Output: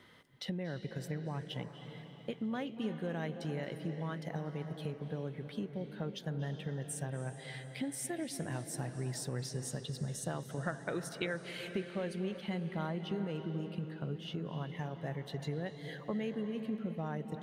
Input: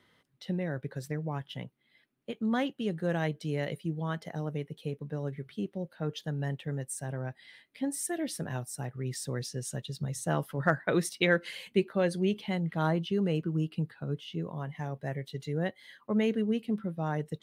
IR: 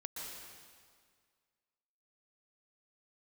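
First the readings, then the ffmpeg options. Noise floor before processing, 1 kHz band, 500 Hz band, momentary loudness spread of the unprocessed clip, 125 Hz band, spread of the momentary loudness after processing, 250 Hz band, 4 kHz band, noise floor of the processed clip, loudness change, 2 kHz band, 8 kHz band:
-70 dBFS, -7.5 dB, -7.5 dB, 9 LU, -5.5 dB, 4 LU, -6.5 dB, -4.5 dB, -51 dBFS, -6.5 dB, -8.5 dB, -4.5 dB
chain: -filter_complex "[0:a]acompressor=threshold=0.00631:ratio=4,asplit=2[s0][s1];[1:a]atrim=start_sample=2205,asetrate=22050,aresample=44100,highshelf=f=6100:g=-10[s2];[s1][s2]afir=irnorm=-1:irlink=0,volume=0.447[s3];[s0][s3]amix=inputs=2:normalize=0,volume=1.5"

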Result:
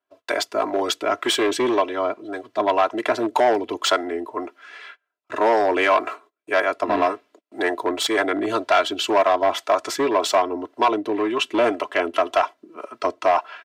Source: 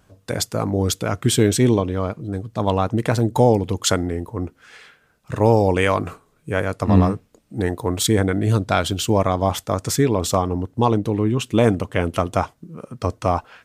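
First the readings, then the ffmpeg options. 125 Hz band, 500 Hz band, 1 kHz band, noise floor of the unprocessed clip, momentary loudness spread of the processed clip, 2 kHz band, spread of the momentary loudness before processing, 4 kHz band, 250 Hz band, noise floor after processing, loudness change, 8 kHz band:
-28.0 dB, +0.5 dB, +3.5 dB, -60 dBFS, 11 LU, +4.5 dB, 11 LU, +2.0 dB, -6.0 dB, -78 dBFS, -1.0 dB, -6.5 dB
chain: -filter_complex "[0:a]agate=range=0.0501:threshold=0.00398:ratio=16:detection=peak,acrossover=split=450[s0][s1];[s0]aeval=exprs='val(0)*(1-0.5/2+0.5/2*cos(2*PI*1.9*n/s))':c=same[s2];[s1]aeval=exprs='val(0)*(1-0.5/2-0.5/2*cos(2*PI*1.9*n/s))':c=same[s3];[s2][s3]amix=inputs=2:normalize=0,highpass=290,aecho=1:1:3:0.88,asplit=2[s4][s5];[s5]alimiter=limit=0.211:level=0:latency=1:release=302,volume=1.26[s6];[s4][s6]amix=inputs=2:normalize=0,asoftclip=type=hard:threshold=0.299,acrossover=split=390 4400:gain=0.178 1 0.178[s7][s8][s9];[s7][s8][s9]amix=inputs=3:normalize=0"

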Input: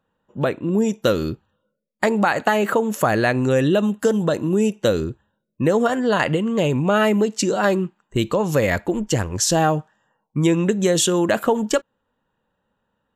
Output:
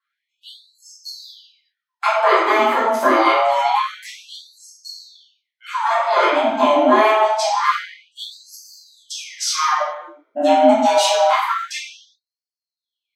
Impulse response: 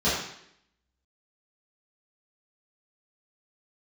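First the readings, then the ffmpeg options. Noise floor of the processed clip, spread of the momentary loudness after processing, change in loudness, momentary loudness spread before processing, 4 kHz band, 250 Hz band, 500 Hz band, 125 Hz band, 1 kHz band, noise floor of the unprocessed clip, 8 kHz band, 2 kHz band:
under -85 dBFS, 21 LU, +3.5 dB, 7 LU, +4.0 dB, -6.0 dB, +0.5 dB, under -30 dB, +8.5 dB, -75 dBFS, -2.5 dB, +2.0 dB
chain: -filter_complex "[0:a]aeval=exprs='val(0)*sin(2*PI*440*n/s)':c=same[s0];[1:a]atrim=start_sample=2205,afade=t=out:st=0.42:d=0.01,atrim=end_sample=18963,asetrate=38367,aresample=44100[s1];[s0][s1]afir=irnorm=-1:irlink=0,afftfilt=real='re*gte(b*sr/1024,220*pow(4300/220,0.5+0.5*sin(2*PI*0.26*pts/sr)))':imag='im*gte(b*sr/1024,220*pow(4300/220,0.5+0.5*sin(2*PI*0.26*pts/sr)))':win_size=1024:overlap=0.75,volume=0.398"

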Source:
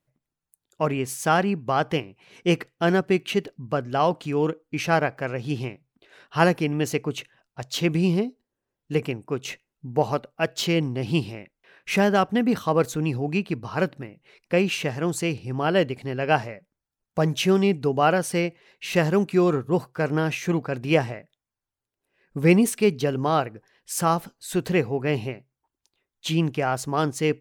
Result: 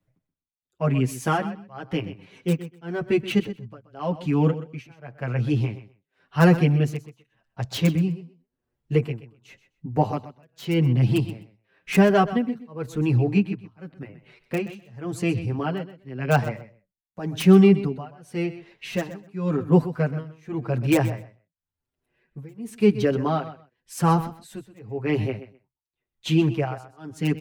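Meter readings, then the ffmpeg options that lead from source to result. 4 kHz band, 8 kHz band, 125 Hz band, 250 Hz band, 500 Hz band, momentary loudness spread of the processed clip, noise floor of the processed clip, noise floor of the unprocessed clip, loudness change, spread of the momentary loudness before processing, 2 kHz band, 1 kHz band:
-5.0 dB, -7.5 dB, +4.0 dB, +1.5 dB, -2.0 dB, 18 LU, under -85 dBFS, under -85 dBFS, +0.5 dB, 11 LU, -4.5 dB, -3.5 dB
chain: -filter_complex "[0:a]bass=f=250:g=8,treble=f=4000:g=-6,acrossover=split=130|450|1900[s0][s1][s2][s3];[s3]aeval=exprs='(mod(11.2*val(0)+1,2)-1)/11.2':c=same[s4];[s0][s1][s2][s4]amix=inputs=4:normalize=0,tremolo=f=0.91:d=0.99,aecho=1:1:127|254:0.2|0.0319,asplit=2[s5][s6];[s6]adelay=7.1,afreqshift=-0.52[s7];[s5][s7]amix=inputs=2:normalize=1,volume=1.58"

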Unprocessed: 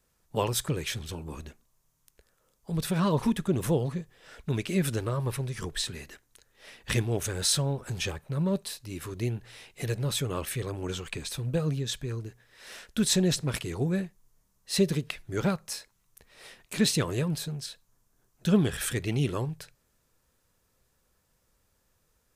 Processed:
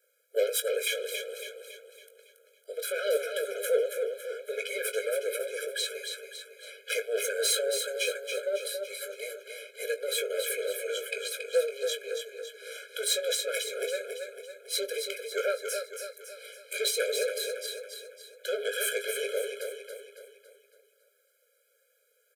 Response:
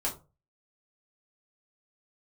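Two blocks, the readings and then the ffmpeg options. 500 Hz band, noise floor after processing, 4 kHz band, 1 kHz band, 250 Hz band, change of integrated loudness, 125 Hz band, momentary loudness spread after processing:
+4.0 dB, -70 dBFS, +1.0 dB, -7.5 dB, under -25 dB, -1.5 dB, under -40 dB, 15 LU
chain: -filter_complex "[0:a]highpass=f=210:w=0.5412,highpass=f=210:w=1.3066,equalizer=f=5400:w=1.2:g=-8.5,bandreject=f=60:t=h:w=6,bandreject=f=120:t=h:w=6,bandreject=f=180:t=h:w=6,bandreject=f=240:t=h:w=6,bandreject=f=300:t=h:w=6,bandreject=f=360:t=h:w=6,bandreject=f=420:t=h:w=6,aeval=exprs='(tanh(17.8*val(0)+0.4)-tanh(0.4))/17.8':c=same,asuperstop=centerf=930:order=8:qfactor=1.1,asplit=2[s0][s1];[s1]adelay=20,volume=0.355[s2];[s0][s2]amix=inputs=2:normalize=0,aecho=1:1:278|556|834|1112|1390|1668:0.501|0.241|0.115|0.0554|0.0266|0.0128,asplit=2[s3][s4];[1:a]atrim=start_sample=2205,lowpass=4700[s5];[s4][s5]afir=irnorm=-1:irlink=0,volume=0.112[s6];[s3][s6]amix=inputs=2:normalize=0,afftfilt=real='re*eq(mod(floor(b*sr/1024/420),2),1)':imag='im*eq(mod(floor(b*sr/1024/420),2),1)':win_size=1024:overlap=0.75,volume=2.66"

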